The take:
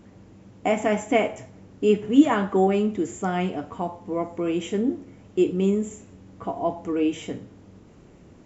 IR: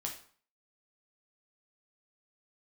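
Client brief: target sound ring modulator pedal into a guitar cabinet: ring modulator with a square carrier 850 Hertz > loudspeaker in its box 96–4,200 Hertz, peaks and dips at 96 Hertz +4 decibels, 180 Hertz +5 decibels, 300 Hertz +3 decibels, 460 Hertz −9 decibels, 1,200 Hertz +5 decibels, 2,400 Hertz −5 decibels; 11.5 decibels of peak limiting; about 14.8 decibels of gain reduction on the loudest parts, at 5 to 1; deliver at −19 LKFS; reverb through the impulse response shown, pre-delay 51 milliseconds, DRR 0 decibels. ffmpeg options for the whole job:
-filter_complex "[0:a]acompressor=threshold=-26dB:ratio=5,alimiter=level_in=2.5dB:limit=-24dB:level=0:latency=1,volume=-2.5dB,asplit=2[link_01][link_02];[1:a]atrim=start_sample=2205,adelay=51[link_03];[link_02][link_03]afir=irnorm=-1:irlink=0,volume=0dB[link_04];[link_01][link_04]amix=inputs=2:normalize=0,aeval=exprs='val(0)*sgn(sin(2*PI*850*n/s))':channel_layout=same,highpass=96,equalizer=frequency=96:width_type=q:width=4:gain=4,equalizer=frequency=180:width_type=q:width=4:gain=5,equalizer=frequency=300:width_type=q:width=4:gain=3,equalizer=frequency=460:width_type=q:width=4:gain=-9,equalizer=frequency=1200:width_type=q:width=4:gain=5,equalizer=frequency=2400:width_type=q:width=4:gain=-5,lowpass=frequency=4200:width=0.5412,lowpass=frequency=4200:width=1.3066,volume=12.5dB"

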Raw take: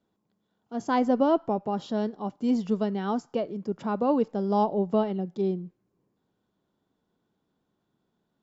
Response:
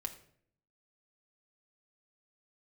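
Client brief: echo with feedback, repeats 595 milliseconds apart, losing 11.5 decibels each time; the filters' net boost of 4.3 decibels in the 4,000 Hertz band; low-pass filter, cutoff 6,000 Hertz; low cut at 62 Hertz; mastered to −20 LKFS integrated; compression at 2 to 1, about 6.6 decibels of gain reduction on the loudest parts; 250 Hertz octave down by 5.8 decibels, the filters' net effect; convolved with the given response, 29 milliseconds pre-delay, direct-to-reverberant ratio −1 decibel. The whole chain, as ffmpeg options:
-filter_complex "[0:a]highpass=62,lowpass=6000,equalizer=frequency=250:width_type=o:gain=-7,equalizer=frequency=4000:width_type=o:gain=6.5,acompressor=threshold=-32dB:ratio=2,aecho=1:1:595|1190|1785:0.266|0.0718|0.0194,asplit=2[link_01][link_02];[1:a]atrim=start_sample=2205,adelay=29[link_03];[link_02][link_03]afir=irnorm=-1:irlink=0,volume=2.5dB[link_04];[link_01][link_04]amix=inputs=2:normalize=0,volume=10.5dB"

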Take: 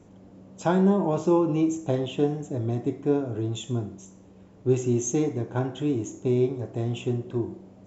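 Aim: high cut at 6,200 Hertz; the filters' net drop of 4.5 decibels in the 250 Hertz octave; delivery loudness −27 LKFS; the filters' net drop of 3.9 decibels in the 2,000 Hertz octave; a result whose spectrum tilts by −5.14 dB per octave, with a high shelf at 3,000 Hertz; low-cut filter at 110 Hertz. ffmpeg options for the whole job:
ffmpeg -i in.wav -af "highpass=110,lowpass=6200,equalizer=frequency=250:width_type=o:gain=-6.5,equalizer=frequency=2000:width_type=o:gain=-8,highshelf=frequency=3000:gain=5,volume=2.5dB" out.wav

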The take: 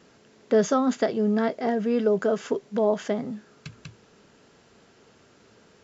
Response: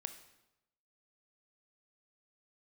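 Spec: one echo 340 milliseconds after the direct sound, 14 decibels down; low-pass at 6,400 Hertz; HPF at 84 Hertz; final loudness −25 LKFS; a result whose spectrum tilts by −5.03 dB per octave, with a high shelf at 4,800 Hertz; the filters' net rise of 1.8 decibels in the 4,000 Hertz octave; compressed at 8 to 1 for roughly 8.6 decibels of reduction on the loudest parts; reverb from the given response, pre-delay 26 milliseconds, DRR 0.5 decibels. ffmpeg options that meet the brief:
-filter_complex "[0:a]highpass=84,lowpass=6400,equalizer=frequency=4000:width_type=o:gain=5,highshelf=frequency=4800:gain=-4,acompressor=threshold=-25dB:ratio=8,aecho=1:1:340:0.2,asplit=2[link_01][link_02];[1:a]atrim=start_sample=2205,adelay=26[link_03];[link_02][link_03]afir=irnorm=-1:irlink=0,volume=2.5dB[link_04];[link_01][link_04]amix=inputs=2:normalize=0,volume=3.5dB"

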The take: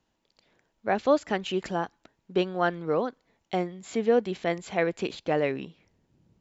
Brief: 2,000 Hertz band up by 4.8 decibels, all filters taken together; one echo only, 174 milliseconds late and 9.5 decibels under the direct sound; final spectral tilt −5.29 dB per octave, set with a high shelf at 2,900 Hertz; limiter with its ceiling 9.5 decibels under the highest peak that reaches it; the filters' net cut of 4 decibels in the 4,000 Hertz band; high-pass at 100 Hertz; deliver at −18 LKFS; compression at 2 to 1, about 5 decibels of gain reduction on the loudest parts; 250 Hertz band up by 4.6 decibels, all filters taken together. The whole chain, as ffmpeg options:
ffmpeg -i in.wav -af "highpass=100,equalizer=frequency=250:width_type=o:gain=6.5,equalizer=frequency=2000:width_type=o:gain=9,highshelf=frequency=2900:gain=-4.5,equalizer=frequency=4000:width_type=o:gain=-7.5,acompressor=threshold=-23dB:ratio=2,alimiter=limit=-20.5dB:level=0:latency=1,aecho=1:1:174:0.335,volume=14.5dB" out.wav

